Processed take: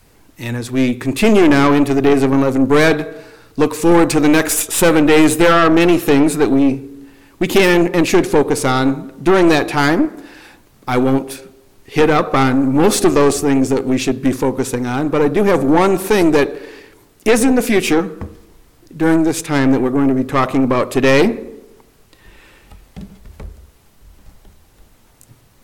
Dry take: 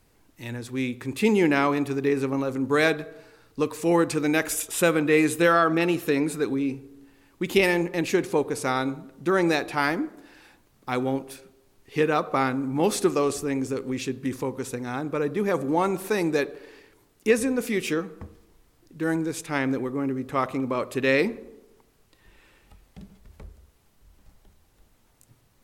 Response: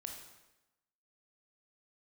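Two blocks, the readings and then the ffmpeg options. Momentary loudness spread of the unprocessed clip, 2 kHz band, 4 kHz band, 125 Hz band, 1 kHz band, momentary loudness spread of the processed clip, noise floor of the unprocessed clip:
10 LU, +8.5 dB, +11.5 dB, +11.5 dB, +10.0 dB, 10 LU, -62 dBFS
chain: -af "apsyclip=14dB,adynamicequalizer=threshold=0.141:dfrequency=300:dqfactor=1.3:tfrequency=300:tqfactor=1.3:attack=5:release=100:ratio=0.375:range=1.5:mode=boostabove:tftype=bell,aeval=exprs='(tanh(2*val(0)+0.5)-tanh(0.5))/2':c=same"

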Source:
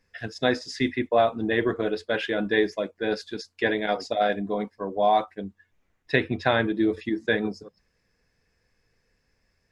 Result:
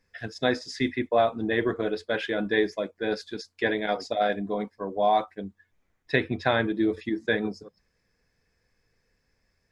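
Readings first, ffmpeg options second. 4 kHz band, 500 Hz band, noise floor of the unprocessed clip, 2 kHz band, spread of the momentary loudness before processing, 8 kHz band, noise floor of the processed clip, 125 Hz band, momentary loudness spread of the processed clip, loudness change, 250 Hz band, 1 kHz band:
-1.5 dB, -1.5 dB, -72 dBFS, -1.5 dB, 9 LU, n/a, -74 dBFS, -1.5 dB, 9 LU, -1.5 dB, -1.5 dB, -1.5 dB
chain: -af "bandreject=f=2.8k:w=16,volume=-1.5dB"

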